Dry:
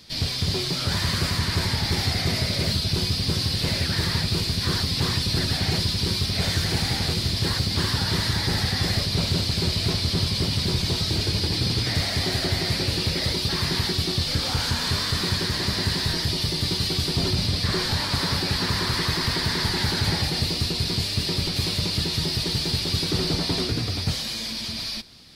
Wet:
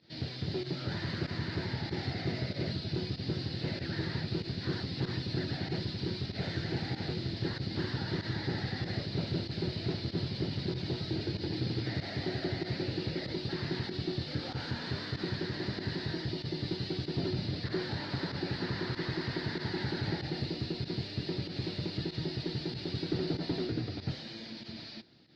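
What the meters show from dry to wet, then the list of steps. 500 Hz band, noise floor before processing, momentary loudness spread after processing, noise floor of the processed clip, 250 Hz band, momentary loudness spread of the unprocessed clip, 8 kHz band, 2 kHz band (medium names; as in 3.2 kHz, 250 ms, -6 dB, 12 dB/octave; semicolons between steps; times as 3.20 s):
-6.0 dB, -30 dBFS, 2 LU, -44 dBFS, -6.5 dB, 1 LU, under -25 dB, -11.5 dB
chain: cabinet simulation 120–3800 Hz, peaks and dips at 130 Hz +5 dB, 330 Hz +8 dB, 1.1 kHz -10 dB, 2.4 kHz -6 dB, 3.3 kHz -7 dB; volume shaper 95 bpm, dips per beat 1, -13 dB, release 61 ms; Chebyshev shaper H 4 -31 dB, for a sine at -12 dBFS; trim -8.5 dB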